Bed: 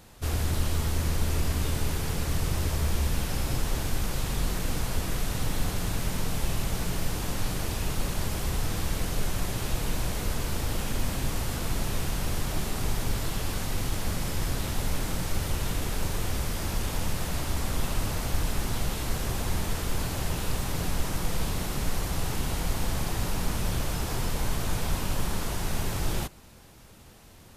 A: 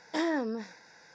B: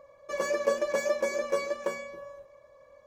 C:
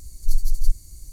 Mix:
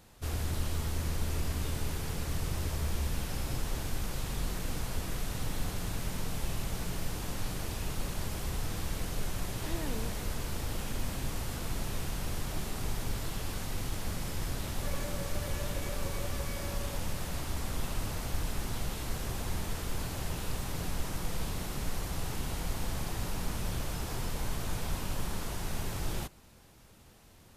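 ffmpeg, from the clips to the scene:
ffmpeg -i bed.wav -i cue0.wav -i cue1.wav -filter_complex "[0:a]volume=-6dB[link_01];[1:a]alimiter=level_in=1.5dB:limit=-24dB:level=0:latency=1:release=71,volume=-1.5dB[link_02];[2:a]acompressor=threshold=-41dB:ratio=6:attack=3.2:release=140:knee=1:detection=peak[link_03];[link_02]atrim=end=1.14,asetpts=PTS-STARTPTS,volume=-8.5dB,afade=type=in:duration=0.004:curve=hsin,afade=type=out:start_time=1.136:duration=0.004:curve=hsin,adelay=9500[link_04];[link_03]atrim=end=3.06,asetpts=PTS-STARTPTS,volume=-1dB,afade=type=in:duration=0.004:curve=hsin,afade=type=out:start_time=3.056:duration=0.004:curve=hsin,adelay=14540[link_05];[link_01][link_04][link_05]amix=inputs=3:normalize=0" out.wav

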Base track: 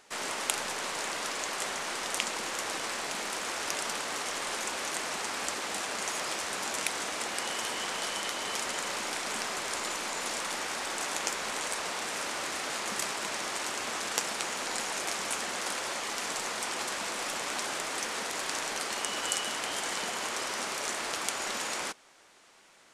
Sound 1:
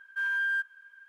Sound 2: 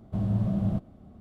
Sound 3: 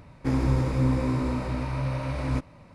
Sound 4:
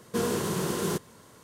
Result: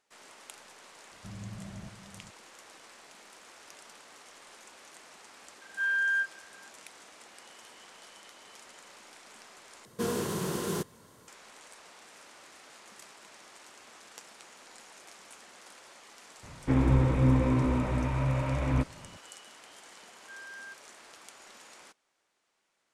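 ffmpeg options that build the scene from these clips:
ffmpeg -i bed.wav -i cue0.wav -i cue1.wav -i cue2.wav -i cue3.wav -filter_complex "[1:a]asplit=2[link_01][link_02];[0:a]volume=-18.5dB[link_03];[2:a]aecho=1:1:406:0.316[link_04];[link_01]asplit=2[link_05][link_06];[link_06]adelay=29,volume=-3.5dB[link_07];[link_05][link_07]amix=inputs=2:normalize=0[link_08];[3:a]aresample=8000,aresample=44100[link_09];[link_03]asplit=2[link_10][link_11];[link_10]atrim=end=9.854[link_12];[4:a]atrim=end=1.43,asetpts=PTS-STARTPTS,volume=-3.5dB[link_13];[link_11]atrim=start=11.276[link_14];[link_04]atrim=end=1.2,asetpts=PTS-STARTPTS,volume=-16.5dB,afade=type=in:duration=0.004:curve=hsin,afade=type=out:start_time=1.196:duration=0.004:curve=hsin,adelay=1110[link_15];[link_08]atrim=end=1.08,asetpts=PTS-STARTPTS,volume=-3dB,afade=type=in:duration=0.004:curve=hsin,afade=type=out:start_time=1.076:duration=0.004:curve=hsin,adelay=247401S[link_16];[link_09]atrim=end=2.74,asetpts=PTS-STARTPTS,afade=type=in:duration=0.004:curve=hsin,afade=type=out:start_time=2.736:duration=0.004:curve=hsin,adelay=16430[link_17];[link_02]atrim=end=1.08,asetpts=PTS-STARTPTS,volume=-17.5dB,afade=type=in:duration=0.004:curve=hsin,afade=type=out:start_time=1.076:duration=0.004:curve=hsin,adelay=20120[link_18];[link_12][link_13]acrossfade=duration=0.004:curve1=hsin:curve2=hsin[link_19];[link_19][link_14]acrossfade=duration=0.004:curve1=hsin:curve2=hsin[link_20];[link_20][link_15][link_16][link_17][link_18]amix=inputs=5:normalize=0" out.wav

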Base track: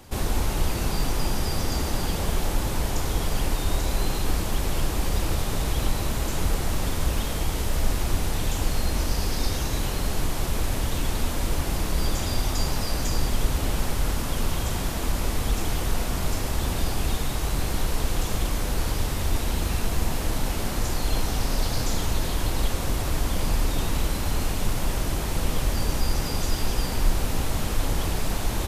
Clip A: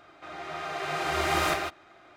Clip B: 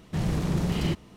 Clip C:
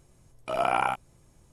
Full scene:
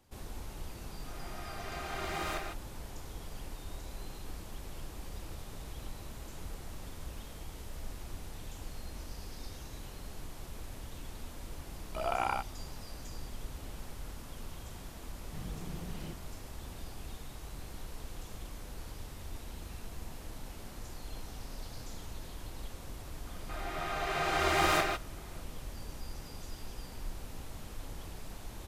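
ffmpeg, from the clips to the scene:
ffmpeg -i bed.wav -i cue0.wav -i cue1.wav -i cue2.wav -filter_complex "[1:a]asplit=2[link_01][link_02];[0:a]volume=-19dB[link_03];[3:a]dynaudnorm=framelen=250:gausssize=3:maxgain=11.5dB[link_04];[link_01]atrim=end=2.16,asetpts=PTS-STARTPTS,volume=-11dB,afade=type=in:duration=0.004:curve=hsin,afade=type=out:start_time=2.156:duration=0.004:curve=hsin,adelay=840[link_05];[link_04]atrim=end=1.52,asetpts=PTS-STARTPTS,volume=-15.5dB,afade=type=in:duration=0.004:curve=hsin,afade=type=out:start_time=1.516:duration=0.004:curve=hsin,adelay=11470[link_06];[2:a]atrim=end=1.16,asetpts=PTS-STARTPTS,volume=-18dB,afade=type=in:duration=0.004:curve=hsin,afade=type=out:start_time=1.156:duration=0.004:curve=hsin,adelay=15190[link_07];[link_02]atrim=end=2.16,asetpts=PTS-STARTPTS,volume=-1.5dB,afade=type=in:duration=0.004:curve=hsin,afade=type=out:start_time=2.156:duration=0.004:curve=hsin,adelay=23270[link_08];[link_03][link_05][link_06][link_07][link_08]amix=inputs=5:normalize=0" out.wav

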